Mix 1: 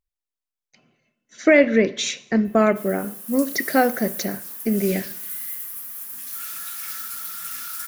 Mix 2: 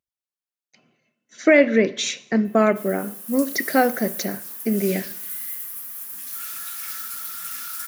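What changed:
speech: add HPF 130 Hz; background: add HPF 140 Hz

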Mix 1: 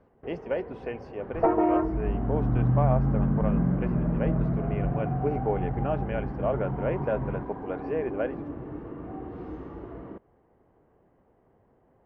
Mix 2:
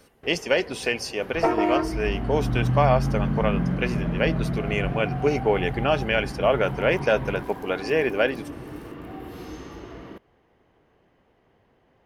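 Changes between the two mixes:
speech +6.5 dB; master: remove LPF 1100 Hz 12 dB/oct

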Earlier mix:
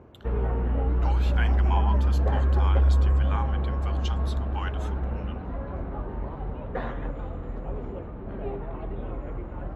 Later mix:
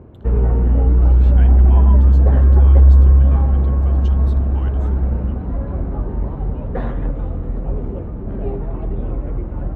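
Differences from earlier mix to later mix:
speech -8.5 dB; master: add low shelf 490 Hz +12 dB

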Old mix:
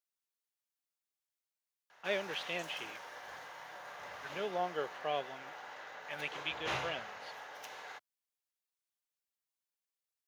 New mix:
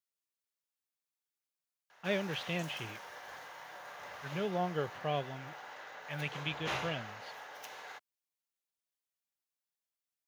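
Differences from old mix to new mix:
speech: remove HPF 390 Hz 12 dB/oct; background: add high shelf 12000 Hz +6.5 dB

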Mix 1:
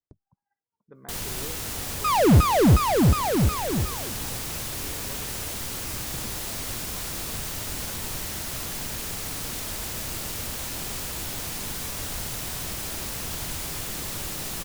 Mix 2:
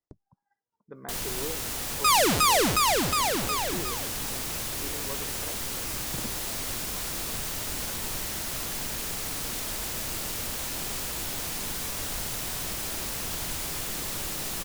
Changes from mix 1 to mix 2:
speech +5.5 dB; second sound: add tilt +4.5 dB/oct; master: add bell 90 Hz -4.5 dB 1.9 oct

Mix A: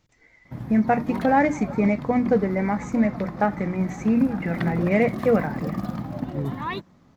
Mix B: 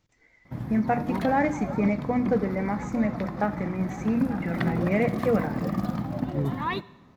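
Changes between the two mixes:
speech -5.5 dB; reverb: on

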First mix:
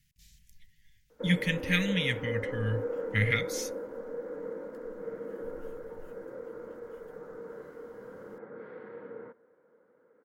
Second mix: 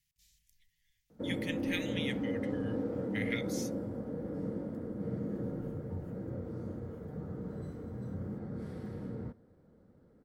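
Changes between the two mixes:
speech: add passive tone stack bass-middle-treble 5-5-5; background: remove speaker cabinet 440–2800 Hz, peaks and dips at 480 Hz +9 dB, 710 Hz -4 dB, 1000 Hz +7 dB, 1500 Hz +9 dB, 2100 Hz +4 dB

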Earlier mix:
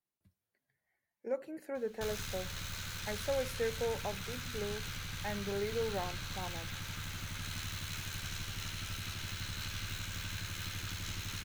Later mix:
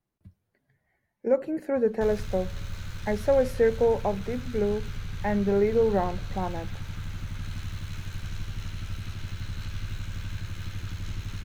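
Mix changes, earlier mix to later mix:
speech +10.5 dB; master: add tilt -2.5 dB/oct

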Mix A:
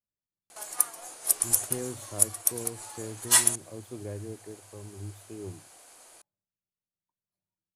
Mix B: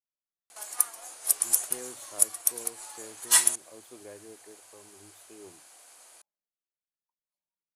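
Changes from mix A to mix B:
speech: add bell 98 Hz -13.5 dB 1.6 oct; master: add low shelf 440 Hz -10.5 dB

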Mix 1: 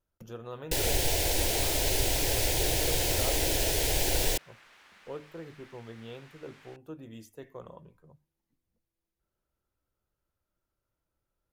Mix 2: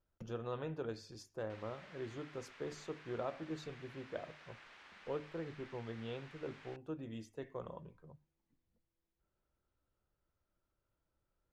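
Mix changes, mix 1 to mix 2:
first sound: muted; master: add air absorption 88 m

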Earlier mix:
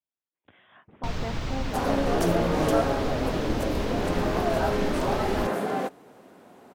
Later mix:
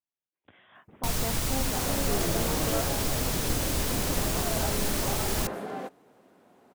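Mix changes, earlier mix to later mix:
first sound: remove air absorption 200 m; second sound -8.0 dB

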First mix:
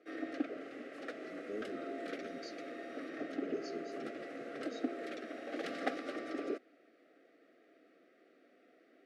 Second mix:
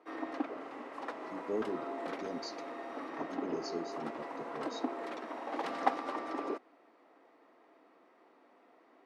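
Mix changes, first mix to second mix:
speech +7.5 dB; master: remove Butterworth band-stop 950 Hz, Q 1.3

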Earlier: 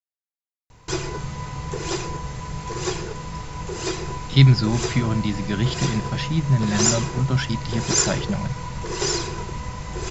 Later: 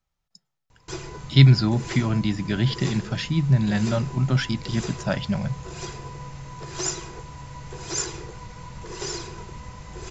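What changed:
speech: entry -3.00 s; background -8.0 dB

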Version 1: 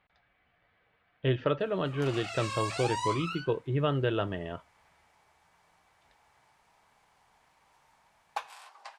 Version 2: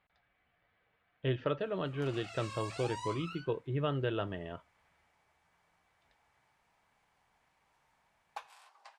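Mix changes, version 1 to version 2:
speech -5.0 dB; background -9.0 dB

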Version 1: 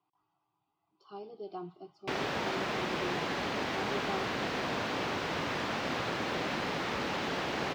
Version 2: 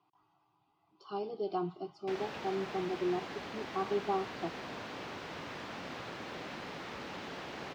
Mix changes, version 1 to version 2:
speech +7.0 dB; background -9.5 dB

